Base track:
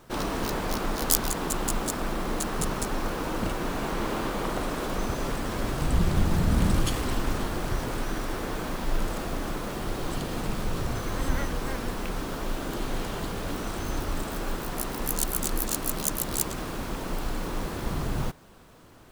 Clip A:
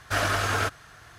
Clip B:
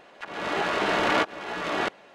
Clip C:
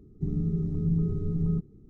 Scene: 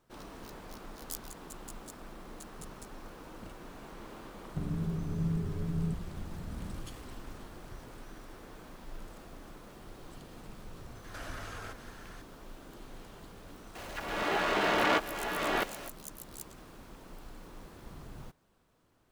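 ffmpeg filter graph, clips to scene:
-filter_complex "[0:a]volume=0.126[s0];[1:a]acompressor=threshold=0.0112:ratio=6:attack=3.2:release=140:knee=1:detection=peak[s1];[2:a]aeval=exprs='val(0)+0.5*0.0141*sgn(val(0))':c=same[s2];[3:a]atrim=end=1.89,asetpts=PTS-STARTPTS,volume=0.501,afade=t=in:d=0.004:c=hsin,afade=t=out:st=1.886:d=0.004:c=hsin,adelay=4340[s3];[s1]atrim=end=1.18,asetpts=PTS-STARTPTS,volume=0.668,afade=t=in:d=0.004:c=hsin,afade=t=out:st=1.176:d=0.004:c=hsin,adelay=11040[s4];[s2]atrim=end=2.14,asetpts=PTS-STARTPTS,volume=0.596,afade=t=in:d=0.004:c=hsin,afade=t=out:st=2.136:d=0.004:c=hsin,adelay=13750[s5];[s0][s3][s4][s5]amix=inputs=4:normalize=0"

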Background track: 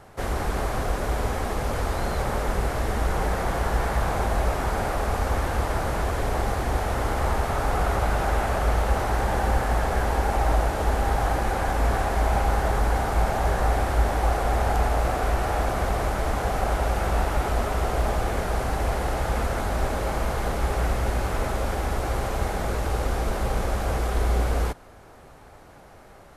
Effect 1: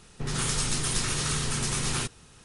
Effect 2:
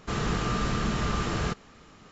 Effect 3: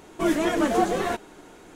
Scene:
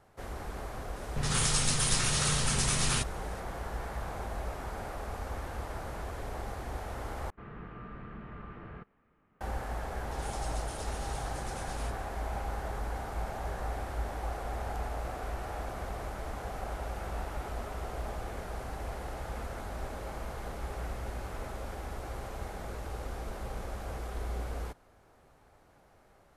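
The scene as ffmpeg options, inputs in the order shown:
-filter_complex "[1:a]asplit=2[s0][s1];[0:a]volume=0.211[s2];[s0]equalizer=f=320:t=o:w=0.62:g=-9.5[s3];[2:a]lowpass=f=2200:w=0.5412,lowpass=f=2200:w=1.3066[s4];[s2]asplit=2[s5][s6];[s5]atrim=end=7.304[s7];[s4]atrim=end=2.11,asetpts=PTS-STARTPTS,volume=0.141[s8];[s6]atrim=start=9.406[s9];[s3]atrim=end=2.44,asetpts=PTS-STARTPTS,afade=t=in:d=0.004:c=hsin,afade=t=out:st=2.436:d=0.004:c=hsin,adelay=960[s10];[s1]atrim=end=2.44,asetpts=PTS-STARTPTS,volume=0.133,afade=t=in:d=0.004:c=hsin,afade=t=out:st=2.436:d=0.004:c=hsin,adelay=9840[s11];[s7][s8]acrossfade=d=0.004:c1=hsin:c2=hsin[s12];[s12][s9]acrossfade=d=0.004:c1=hsin:c2=hsin[s13];[s13][s10][s11]amix=inputs=3:normalize=0"

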